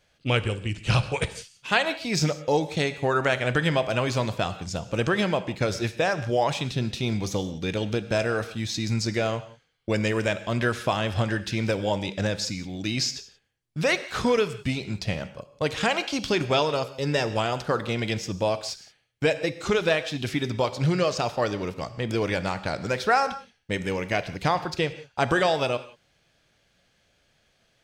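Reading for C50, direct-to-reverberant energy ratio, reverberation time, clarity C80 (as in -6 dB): 13.5 dB, 11.5 dB, no single decay rate, 15.0 dB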